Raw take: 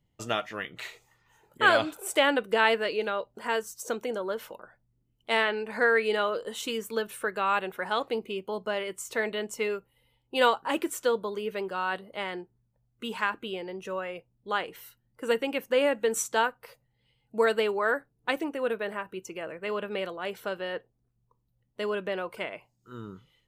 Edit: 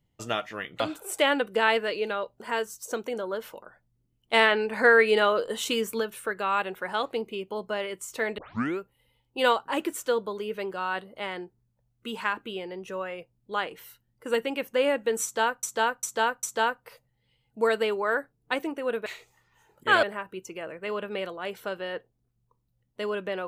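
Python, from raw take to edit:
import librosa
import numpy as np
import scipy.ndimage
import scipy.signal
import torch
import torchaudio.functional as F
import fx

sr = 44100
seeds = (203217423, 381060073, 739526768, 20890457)

y = fx.edit(x, sr, fx.move(start_s=0.8, length_s=0.97, to_s=18.83),
    fx.clip_gain(start_s=5.3, length_s=1.67, db=5.0),
    fx.tape_start(start_s=9.35, length_s=0.41),
    fx.repeat(start_s=16.2, length_s=0.4, count=4), tone=tone)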